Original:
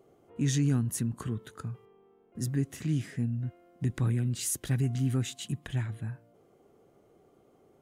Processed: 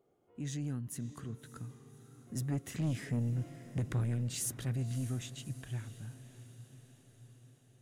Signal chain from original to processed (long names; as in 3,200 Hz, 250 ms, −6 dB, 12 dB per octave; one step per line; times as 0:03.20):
source passing by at 0:03.34, 8 m/s, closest 5.7 metres
soft clipping −29.5 dBFS, distortion −13 dB
on a send: feedback delay with all-pass diffusion 596 ms, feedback 59%, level −15 dB
on the sum: level +1.5 dB